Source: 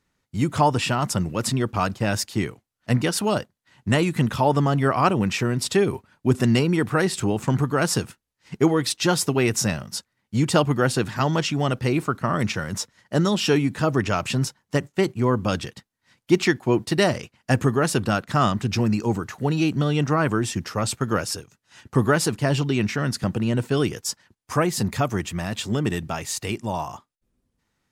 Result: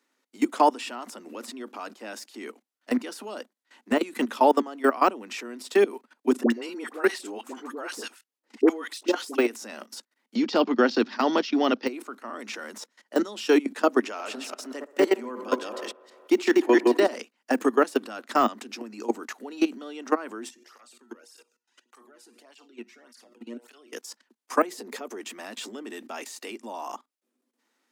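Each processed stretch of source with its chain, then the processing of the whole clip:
6.43–9.38 bell 170 Hz -8.5 dB 0.54 oct + phaser 1.6 Hz, delay 4.7 ms, feedback 26% + dispersion highs, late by 72 ms, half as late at 840 Hz
10.35–11.87 steep low-pass 5400 Hz 48 dB/oct + tone controls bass +8 dB, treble +9 dB
14.02–17.15 reverse delay 0.174 s, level -1 dB + HPF 220 Hz + band-limited delay 61 ms, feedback 75%, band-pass 740 Hz, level -15 dB
20.49–23.93 compressor, threshold -27 dBFS + resonator 120 Hz, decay 0.3 s, mix 70% + tape flanging out of phase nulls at 1.7 Hz, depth 1.9 ms
24.7–25.21 bell 430 Hz +10 dB 0.59 oct + compressor 4:1, threshold -24 dBFS
whole clip: level quantiser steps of 19 dB; steep high-pass 230 Hz 72 dB/oct; de-esser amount 90%; gain +3.5 dB

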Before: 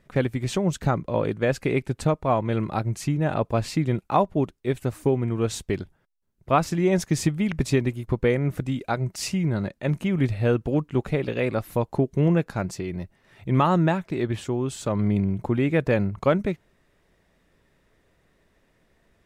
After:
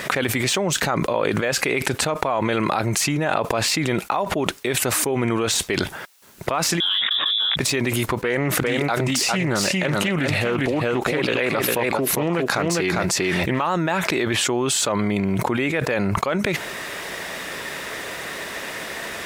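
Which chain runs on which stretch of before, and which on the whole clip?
6.8–7.56 inverted band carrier 3600 Hz + detuned doubles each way 53 cents
8.22–13.69 echo 0.402 s -6.5 dB + Doppler distortion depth 0.25 ms
whole clip: de-esser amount 80%; HPF 1100 Hz 6 dB/oct; fast leveller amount 100%

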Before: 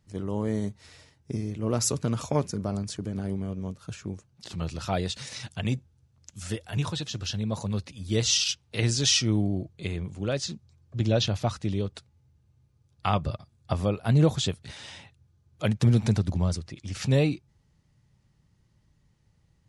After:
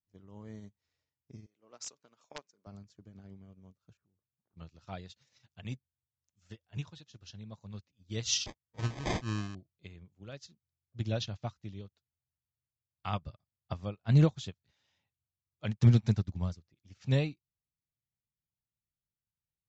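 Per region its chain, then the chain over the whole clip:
1.46–2.67 HPF 440 Hz + wrapped overs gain 15.5 dB
3.97–4.57 compressor 4:1, threshold -42 dBFS + LPF 1400 Hz 24 dB/oct
8.46–9.55 sample-rate reducer 1400 Hz + mismatched tape noise reduction decoder only
whole clip: steep low-pass 7300 Hz 72 dB/oct; dynamic EQ 440 Hz, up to -5 dB, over -37 dBFS, Q 0.81; upward expander 2.5:1, over -41 dBFS; gain +1.5 dB

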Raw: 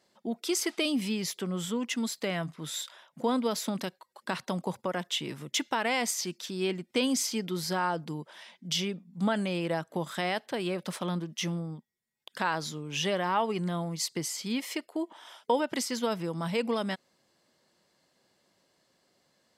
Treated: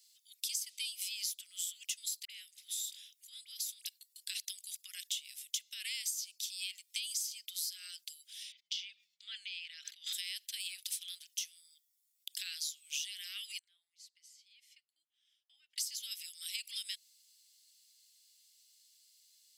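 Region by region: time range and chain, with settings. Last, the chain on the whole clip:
2.25–3.87 compressor 2:1, threshold -44 dBFS + dispersion highs, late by 48 ms, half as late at 1300 Hz
8.52–10.13 air absorption 230 m + sustainer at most 31 dB/s
13.59–15.78 double band-pass 500 Hz, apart 1.3 oct + comb 7 ms, depth 35%
whole clip: inverse Chebyshev high-pass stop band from 1000 Hz, stop band 50 dB; differentiator; compressor 8:1, threshold -46 dBFS; gain +10.5 dB

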